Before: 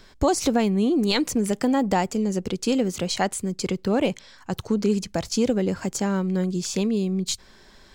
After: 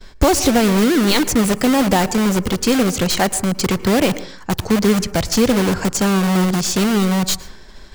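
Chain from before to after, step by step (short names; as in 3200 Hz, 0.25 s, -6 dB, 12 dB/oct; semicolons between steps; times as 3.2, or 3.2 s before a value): expander -46 dBFS; low shelf 77 Hz +9.5 dB; in parallel at -3 dB: wrapped overs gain 22 dB; on the sum: reverb RT60 0.50 s, pre-delay 0.103 s, DRR 16.5 dB; gain +5.5 dB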